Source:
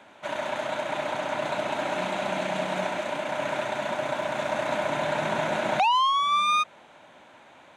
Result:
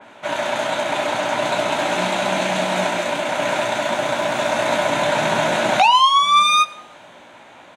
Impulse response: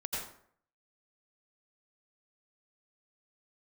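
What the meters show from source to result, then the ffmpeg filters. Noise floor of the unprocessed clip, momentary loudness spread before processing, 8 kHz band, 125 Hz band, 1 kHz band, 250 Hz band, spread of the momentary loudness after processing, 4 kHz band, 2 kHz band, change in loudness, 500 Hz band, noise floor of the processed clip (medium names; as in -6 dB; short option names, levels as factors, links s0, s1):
-53 dBFS, 8 LU, +13.5 dB, +7.5 dB, +8.0 dB, +8.0 dB, 9 LU, +11.5 dB, +9.0 dB, +8.5 dB, +7.5 dB, -44 dBFS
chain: -filter_complex "[0:a]asplit=2[s0][s1];[s1]adelay=17,volume=0.447[s2];[s0][s2]amix=inputs=2:normalize=0,asplit=2[s3][s4];[1:a]atrim=start_sample=2205[s5];[s4][s5]afir=irnorm=-1:irlink=0,volume=0.1[s6];[s3][s6]amix=inputs=2:normalize=0,adynamicequalizer=threshold=0.0126:dfrequency=3100:dqfactor=0.7:tfrequency=3100:tqfactor=0.7:attack=5:release=100:ratio=0.375:range=3:mode=boostabove:tftype=highshelf,volume=2.11"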